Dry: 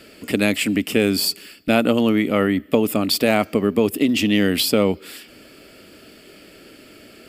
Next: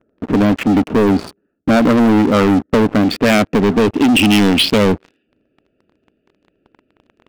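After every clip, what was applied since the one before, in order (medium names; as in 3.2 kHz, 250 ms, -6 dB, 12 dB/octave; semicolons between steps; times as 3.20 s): local Wiener filter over 41 samples; low-pass sweep 1.2 kHz -> 2.9 kHz, 2.48–3.92 s; waveshaping leveller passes 5; trim -5 dB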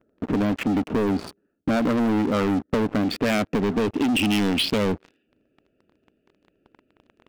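compression 3:1, threshold -18 dBFS, peak gain reduction 6.5 dB; trim -4 dB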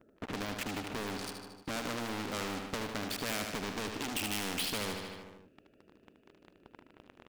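on a send: feedback delay 76 ms, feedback 58%, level -9 dB; on the sum: spectrum-flattening compressor 2:1; trim -8 dB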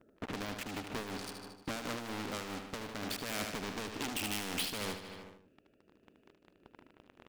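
random flutter of the level, depth 60%; trim +1 dB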